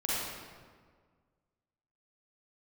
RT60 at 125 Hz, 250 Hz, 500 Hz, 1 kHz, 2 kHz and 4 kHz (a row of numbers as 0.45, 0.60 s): 2.0, 1.9, 1.8, 1.6, 1.3, 1.1 s